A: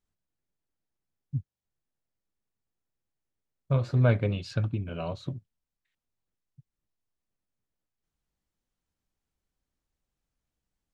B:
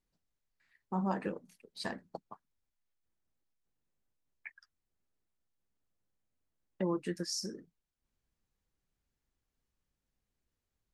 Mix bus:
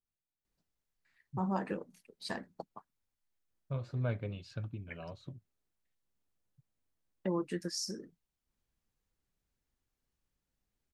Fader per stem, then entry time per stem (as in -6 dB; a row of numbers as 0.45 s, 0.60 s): -12.0 dB, -0.5 dB; 0.00 s, 0.45 s